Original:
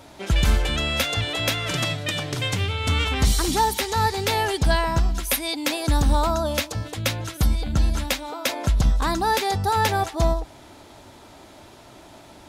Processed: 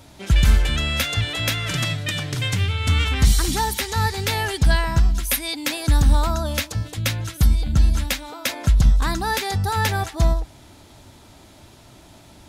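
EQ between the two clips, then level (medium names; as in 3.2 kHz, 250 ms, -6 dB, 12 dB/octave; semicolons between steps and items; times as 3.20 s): dynamic bell 1.7 kHz, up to +5 dB, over -39 dBFS, Q 1.4; tone controls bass +10 dB, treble -3 dB; treble shelf 3.1 kHz +11 dB; -5.5 dB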